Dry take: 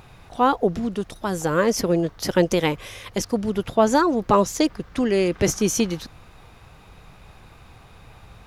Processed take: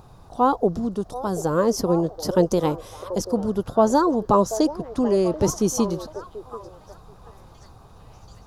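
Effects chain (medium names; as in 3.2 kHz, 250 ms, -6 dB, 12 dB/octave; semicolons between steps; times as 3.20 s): FFT filter 1.1 kHz 0 dB, 2.2 kHz -18 dB, 4.7 kHz -3 dB; on a send: repeats whose band climbs or falls 735 ms, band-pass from 560 Hz, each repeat 0.7 oct, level -10 dB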